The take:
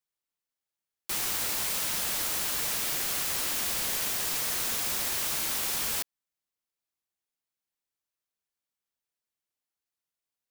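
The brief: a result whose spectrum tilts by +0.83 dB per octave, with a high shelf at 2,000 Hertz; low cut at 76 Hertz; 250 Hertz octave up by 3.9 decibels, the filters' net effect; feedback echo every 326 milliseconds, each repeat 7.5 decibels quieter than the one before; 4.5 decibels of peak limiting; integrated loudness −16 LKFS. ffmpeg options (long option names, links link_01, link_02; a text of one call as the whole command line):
ffmpeg -i in.wav -af "highpass=76,equalizer=frequency=250:width_type=o:gain=5,highshelf=frequency=2000:gain=6.5,alimiter=limit=-16dB:level=0:latency=1,aecho=1:1:326|652|978|1304|1630:0.422|0.177|0.0744|0.0312|0.0131,volume=6.5dB" out.wav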